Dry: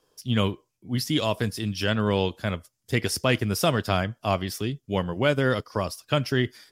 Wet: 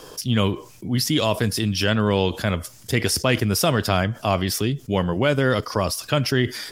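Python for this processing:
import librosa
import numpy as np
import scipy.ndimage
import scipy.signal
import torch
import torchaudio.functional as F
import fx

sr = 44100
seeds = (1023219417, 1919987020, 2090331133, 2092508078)

y = fx.env_flatten(x, sr, amount_pct=50)
y = y * 10.0 ** (1.5 / 20.0)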